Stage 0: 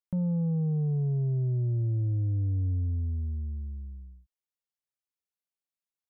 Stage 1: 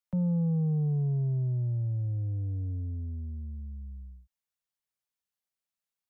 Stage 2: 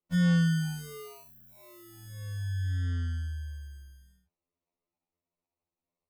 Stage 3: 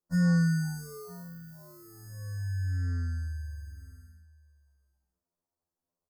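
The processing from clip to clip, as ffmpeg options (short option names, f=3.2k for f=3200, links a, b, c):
-filter_complex "[0:a]equalizer=f=340:w=4.1:g=-14.5,acrossover=split=120|230|380[a][b][c][d];[a]acompressor=threshold=-41dB:ratio=6[e];[e][b][c][d]amix=inputs=4:normalize=0,volume=1.5dB"
-af "acrusher=samples=27:mix=1:aa=0.000001,afftfilt=real='re*2*eq(mod(b,4),0)':imag='im*2*eq(mod(b,4),0)':win_size=2048:overlap=0.75"
-af "asuperstop=centerf=2800:order=12:qfactor=1.1,aecho=1:1:964:0.0841"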